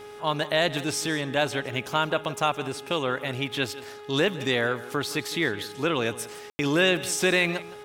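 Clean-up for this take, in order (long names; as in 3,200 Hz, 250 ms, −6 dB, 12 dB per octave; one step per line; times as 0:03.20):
hum removal 416.8 Hz, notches 9
ambience match 0:06.50–0:06.59
echo removal 165 ms −17 dB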